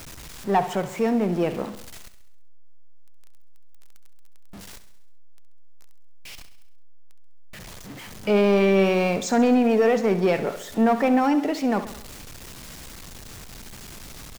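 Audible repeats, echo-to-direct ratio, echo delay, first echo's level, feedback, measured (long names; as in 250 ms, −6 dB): 5, −11.5 dB, 67 ms, −13.0 dB, 56%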